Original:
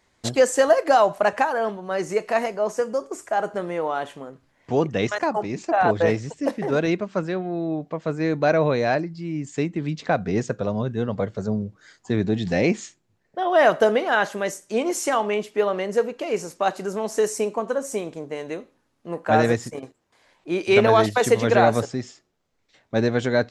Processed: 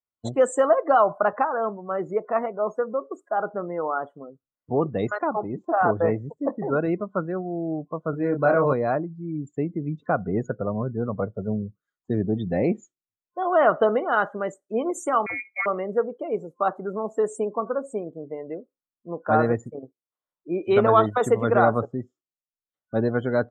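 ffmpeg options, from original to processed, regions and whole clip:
-filter_complex "[0:a]asettb=1/sr,asplit=3[a][b][c];[a]atrim=end=8.104[d];[b]atrim=start=8.1:end=8.73,asetpts=PTS-STARTPTS,afade=t=in:d=0.004:c=qsin,afade=t=out:st=0.626:d=0.004:c=qsin,acrusher=bits=5:mode=log:mix=0:aa=0.000001,asplit=2[e][f];[f]adelay=29,volume=-4.5dB[g];[e][g]amix=inputs=2:normalize=0,atrim=end_sample=27783[h];[c]atrim=start=8.726[i];[d][h]acrossfade=d=0.004:c1=hsin:c2=qsin[j];[j][i]acrossfade=d=0.004:c1=qsin:c2=hsin,asettb=1/sr,asplit=3[k][l][m];[k]atrim=end=15.264[n];[l]atrim=start=15.26:end=15.66,asetpts=PTS-STARTPTS,afade=t=in:d=0.004:c=qsin,afade=t=out:st=0.396:d=0.004:c=qsin,lowshelf=f=390:g=10,lowpass=f=2.2k:t=q:w=0.5098,lowpass=f=2.2k:t=q:w=0.6013,lowpass=f=2.2k:t=q:w=0.9,lowpass=f=2.2k:t=q:w=2.563,afreqshift=-2600[o];[m]atrim=start=15.656[p];[n][o]acrossfade=d=0.004:c1=hsin:c2=qsin[q];[q][p]acrossfade=d=0.004:c1=qsin:c2=hsin,equalizer=f=4.9k:t=o:w=0.65:g=-11.5,afftdn=nr=34:nf=-32,superequalizer=10b=2:11b=0.501:12b=0.316,volume=-2dB"

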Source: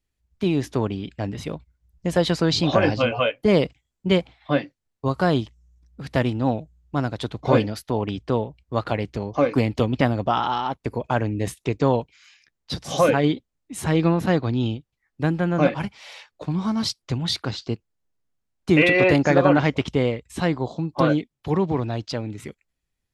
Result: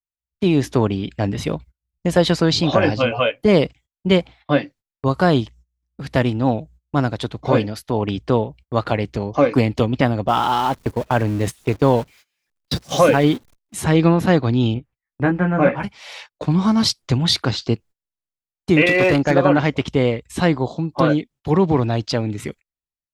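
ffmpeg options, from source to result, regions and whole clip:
-filter_complex "[0:a]asettb=1/sr,asplit=3[a][b][c];[a]atrim=end=10.284[d];[b]atrim=start=10.28:end=13.74,asetpts=PTS-STARTPTS,afade=t=in:d=0.004:c=qsin,afade=t=out:st=3.456:d=0.004:c=qsin,aeval=exprs='val(0)+0.5*0.0211*sgn(val(0))':c=same,agate=range=-19dB:threshold=-29dB:ratio=16:release=100:detection=peak[e];[c]atrim=start=13.736[f];[d][e]acrossfade=d=0.004:c1=hsin:c2=qsin[g];[g][f]acrossfade=d=0.004:c1=qsin:c2=hsin,asettb=1/sr,asplit=3[h][i][j];[h]atrim=end=14.744[k];[i]atrim=start=14.74:end=15.83,asetpts=PTS-STARTPTS,afade=t=in:d=0.004:c=qsin,afade=t=out:st=1.086:d=0.004:c=qsin,highshelf=f=2.9k:t=q:w=1.5:g=-11.5,asplit=2[l][m];[m]adelay=16,volume=-4dB[n];[l][n]amix=inputs=2:normalize=0,atrim=end_sample=48069[o];[j]atrim=start=15.826[p];[k][o]acrossfade=d=0.004:c1=hsin:c2=qsin[q];[q][p]acrossfade=d=0.004:c1=qsin:c2=hsin,asettb=1/sr,asplit=3[r][s][t];[r]atrim=end=18.864[u];[s]atrim=start=18.86:end=19.31,asetpts=PTS-STARTPTS,afade=t=in:d=0.004:c=qsin,afade=t=out:st=0.446:d=0.004:c=qsin,agate=range=-8dB:threshold=-25dB:ratio=16:release=100:detection=peak,asoftclip=type=hard:threshold=-11.5dB[v];[t]atrim=start=19.306[w];[u][v]acrossfade=d=0.004:c1=hsin:c2=qsin[x];[x][w]acrossfade=d=0.004:c1=qsin:c2=hsin,agate=range=-25dB:threshold=-46dB:ratio=16:detection=peak,dynaudnorm=f=110:g=7:m=9dB,volume=-1dB"

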